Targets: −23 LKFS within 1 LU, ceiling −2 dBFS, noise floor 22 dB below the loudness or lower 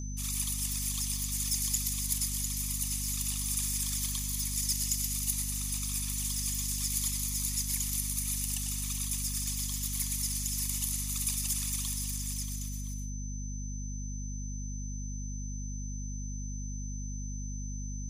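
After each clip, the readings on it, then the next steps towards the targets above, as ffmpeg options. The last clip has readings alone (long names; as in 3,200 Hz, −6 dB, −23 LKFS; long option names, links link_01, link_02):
mains hum 50 Hz; hum harmonics up to 250 Hz; level of the hum −35 dBFS; interfering tone 6,100 Hz; level of the tone −45 dBFS; integrated loudness −32.0 LKFS; sample peak −13.0 dBFS; target loudness −23.0 LKFS
→ -af "bandreject=frequency=50:width_type=h:width=4,bandreject=frequency=100:width_type=h:width=4,bandreject=frequency=150:width_type=h:width=4,bandreject=frequency=200:width_type=h:width=4,bandreject=frequency=250:width_type=h:width=4"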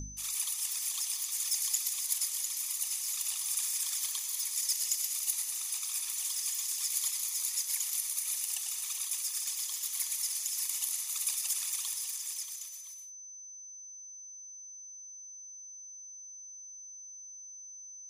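mains hum none found; interfering tone 6,100 Hz; level of the tone −45 dBFS
→ -af "bandreject=frequency=6100:width=30"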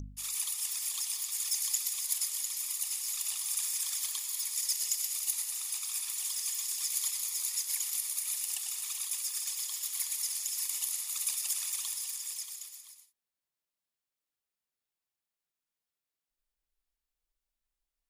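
interfering tone none found; integrated loudness −31.5 LKFS; sample peak −14.0 dBFS; target loudness −23.0 LKFS
→ -af "volume=8.5dB"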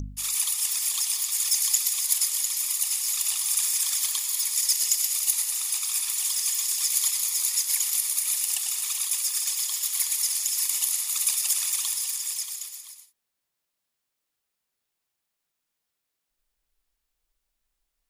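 integrated loudness −23.0 LKFS; sample peak −5.5 dBFS; background noise floor −82 dBFS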